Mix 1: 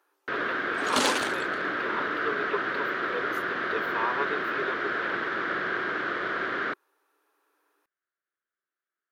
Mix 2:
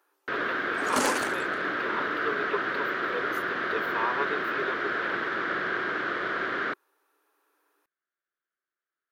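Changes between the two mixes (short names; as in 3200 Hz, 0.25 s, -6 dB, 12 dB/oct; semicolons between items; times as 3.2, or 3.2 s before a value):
second sound: add bell 3600 Hz -11.5 dB 0.7 oct; master: add high shelf 11000 Hz +4.5 dB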